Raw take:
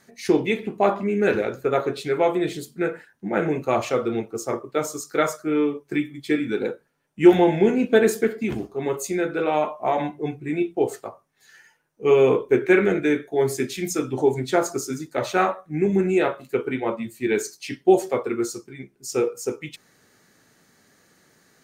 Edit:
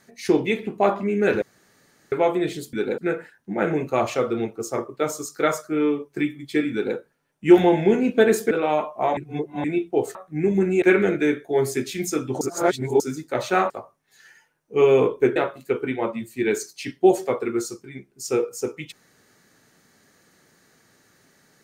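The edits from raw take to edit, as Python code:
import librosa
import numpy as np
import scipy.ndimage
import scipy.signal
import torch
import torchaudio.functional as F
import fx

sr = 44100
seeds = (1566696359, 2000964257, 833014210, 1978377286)

y = fx.edit(x, sr, fx.room_tone_fill(start_s=1.42, length_s=0.7),
    fx.duplicate(start_s=6.47, length_s=0.25, to_s=2.73),
    fx.cut(start_s=8.26, length_s=1.09),
    fx.reverse_span(start_s=10.01, length_s=0.47),
    fx.swap(start_s=10.99, length_s=1.66, other_s=15.53, other_length_s=0.67),
    fx.reverse_span(start_s=14.24, length_s=0.59), tone=tone)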